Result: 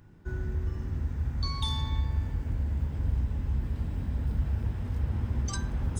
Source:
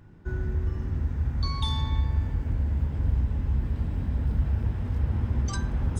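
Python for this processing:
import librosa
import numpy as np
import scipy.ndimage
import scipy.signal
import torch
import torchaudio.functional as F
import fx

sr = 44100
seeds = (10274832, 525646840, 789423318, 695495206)

y = fx.high_shelf(x, sr, hz=4700.0, db=7.5)
y = y * 10.0 ** (-3.5 / 20.0)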